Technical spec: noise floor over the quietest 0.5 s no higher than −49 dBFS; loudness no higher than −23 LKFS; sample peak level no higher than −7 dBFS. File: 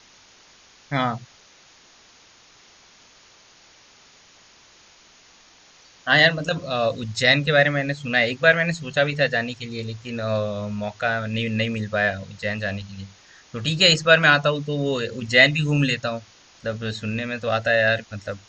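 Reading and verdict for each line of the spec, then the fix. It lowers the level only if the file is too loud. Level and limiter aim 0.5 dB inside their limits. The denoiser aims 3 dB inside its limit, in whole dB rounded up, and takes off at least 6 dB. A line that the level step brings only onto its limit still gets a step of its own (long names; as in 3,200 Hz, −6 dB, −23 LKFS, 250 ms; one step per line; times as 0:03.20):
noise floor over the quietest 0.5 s −53 dBFS: in spec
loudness −21.0 LKFS: out of spec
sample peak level −1.5 dBFS: out of spec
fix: level −2.5 dB
brickwall limiter −7.5 dBFS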